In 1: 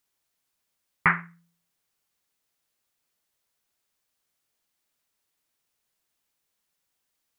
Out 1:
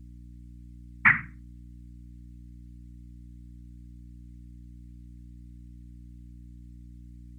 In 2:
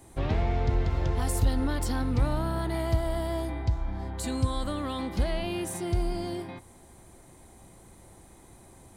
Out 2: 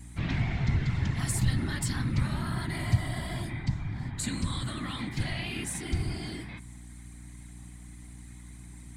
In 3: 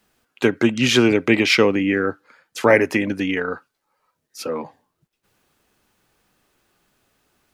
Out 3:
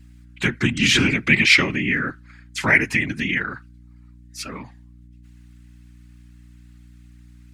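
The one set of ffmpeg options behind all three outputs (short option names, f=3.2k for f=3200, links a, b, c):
-af "afftfilt=real='hypot(re,im)*cos(2*PI*random(0))':imag='hypot(re,im)*sin(2*PI*random(1))':win_size=512:overlap=0.75,equalizer=f=125:t=o:w=1:g=9,equalizer=f=250:t=o:w=1:g=5,equalizer=f=500:t=o:w=1:g=-11,equalizer=f=2k:t=o:w=1:g=12,equalizer=f=4k:t=o:w=1:g=5,equalizer=f=8k:t=o:w=1:g=10,aeval=exprs='val(0)+0.00631*(sin(2*PI*60*n/s)+sin(2*PI*2*60*n/s)/2+sin(2*PI*3*60*n/s)/3+sin(2*PI*4*60*n/s)/4+sin(2*PI*5*60*n/s)/5)':c=same,volume=-1dB"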